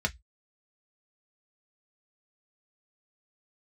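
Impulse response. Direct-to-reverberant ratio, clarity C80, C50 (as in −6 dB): 3.0 dB, 39.5 dB, 26.5 dB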